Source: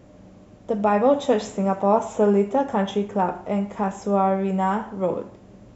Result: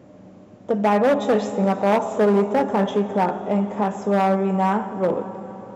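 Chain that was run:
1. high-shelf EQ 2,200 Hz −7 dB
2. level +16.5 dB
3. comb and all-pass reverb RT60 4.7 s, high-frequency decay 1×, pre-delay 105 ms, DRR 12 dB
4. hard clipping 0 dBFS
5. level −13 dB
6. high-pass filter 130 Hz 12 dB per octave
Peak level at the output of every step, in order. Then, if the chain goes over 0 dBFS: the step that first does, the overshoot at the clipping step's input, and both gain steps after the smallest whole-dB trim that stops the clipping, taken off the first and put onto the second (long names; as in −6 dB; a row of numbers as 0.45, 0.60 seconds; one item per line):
−7.5, +9.0, +9.0, 0.0, −13.0, −8.0 dBFS
step 2, 9.0 dB
step 2 +7.5 dB, step 5 −4 dB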